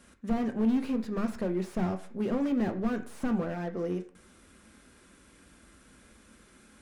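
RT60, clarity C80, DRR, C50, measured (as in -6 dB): 0.50 s, 17.0 dB, 5.5 dB, 13.0 dB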